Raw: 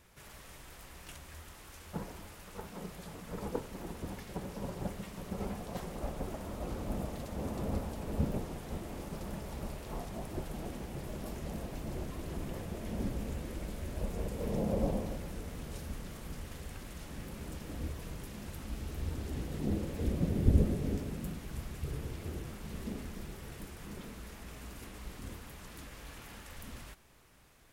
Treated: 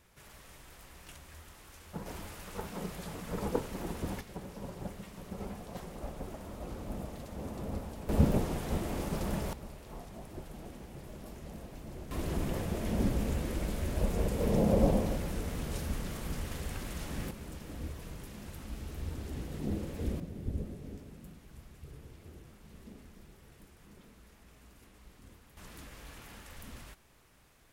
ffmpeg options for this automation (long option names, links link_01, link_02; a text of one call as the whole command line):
ffmpeg -i in.wav -af "asetnsamples=nb_out_samples=441:pad=0,asendcmd='2.06 volume volume 4.5dB;4.21 volume volume -3dB;8.09 volume volume 7dB;9.53 volume volume -5.5dB;12.11 volume volume 6dB;17.31 volume volume -1.5dB;20.2 volume volume -11dB;25.57 volume volume -1dB',volume=-2dB" out.wav